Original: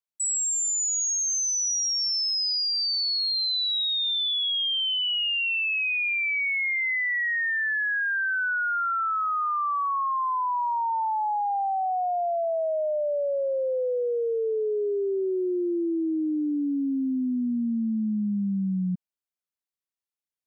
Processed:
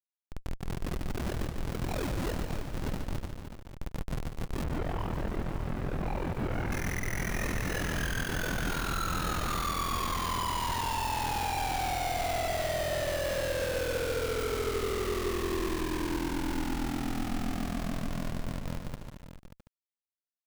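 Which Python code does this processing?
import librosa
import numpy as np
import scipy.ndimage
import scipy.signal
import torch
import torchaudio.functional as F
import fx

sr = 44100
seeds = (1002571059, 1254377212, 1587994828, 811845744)

y = fx.delta_mod(x, sr, bps=16000, step_db=-47.0)
y = y * np.sin(2.0 * np.pi * 21.0 * np.arange(len(y)) / sr)
y = fx.over_compress(y, sr, threshold_db=-37.0, ratio=-0.5)
y = fx.schmitt(y, sr, flips_db=-41.0)
y = fx.lowpass(y, sr, hz=2200.0, slope=12, at=(4.64, 6.71))
y = y + 10.0 ** (-12.0 / 20.0) * np.pad(y, (int(584 * sr / 1000.0), 0))[:len(y)]
y = fx.echo_crushed(y, sr, ms=146, feedback_pct=55, bits=9, wet_db=-6.0)
y = F.gain(torch.from_numpy(y), 8.0).numpy()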